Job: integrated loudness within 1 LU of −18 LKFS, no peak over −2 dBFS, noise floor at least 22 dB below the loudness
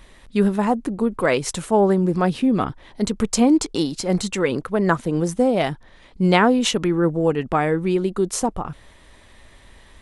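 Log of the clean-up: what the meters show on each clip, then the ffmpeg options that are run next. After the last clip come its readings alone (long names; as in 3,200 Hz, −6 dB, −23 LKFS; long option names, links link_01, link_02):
integrated loudness −20.5 LKFS; sample peak −2.5 dBFS; target loudness −18.0 LKFS
→ -af "volume=2.5dB,alimiter=limit=-2dB:level=0:latency=1"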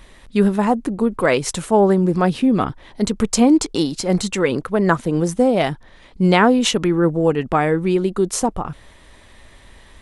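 integrated loudness −18.0 LKFS; sample peak −2.0 dBFS; background noise floor −47 dBFS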